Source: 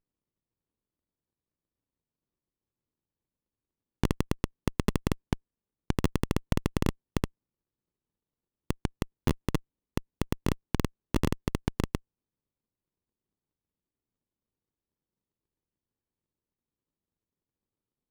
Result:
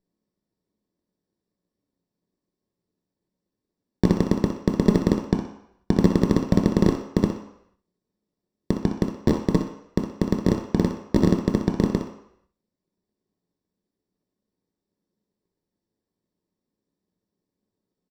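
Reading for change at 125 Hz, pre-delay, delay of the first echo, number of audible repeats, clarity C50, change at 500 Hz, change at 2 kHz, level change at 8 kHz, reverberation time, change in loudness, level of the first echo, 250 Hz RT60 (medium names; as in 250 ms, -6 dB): +7.0 dB, 3 ms, 62 ms, 1, 5.0 dB, +11.0 dB, +2.5 dB, +1.0 dB, 0.75 s, +9.5 dB, -9.5 dB, 0.55 s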